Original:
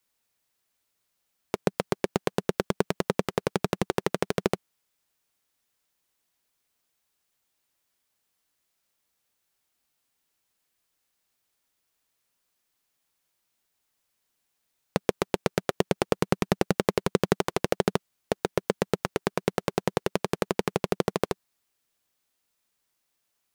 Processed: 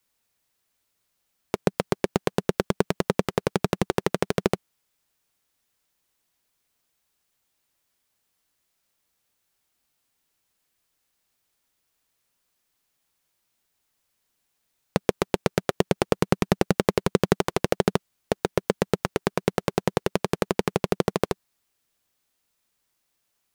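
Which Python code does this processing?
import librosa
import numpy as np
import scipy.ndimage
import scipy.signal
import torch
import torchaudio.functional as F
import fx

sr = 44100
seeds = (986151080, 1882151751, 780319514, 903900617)

y = fx.low_shelf(x, sr, hz=170.0, db=3.5)
y = F.gain(torch.from_numpy(y), 2.0).numpy()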